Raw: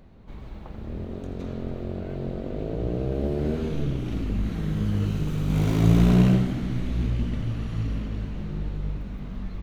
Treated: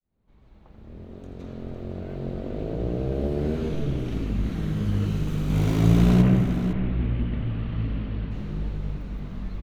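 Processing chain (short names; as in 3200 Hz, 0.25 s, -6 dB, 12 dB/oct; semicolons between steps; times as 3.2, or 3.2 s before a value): opening faded in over 2.53 s; 6.21–8.3 LPF 2600 Hz -> 4000 Hz 24 dB/oct; echo 0.507 s -10.5 dB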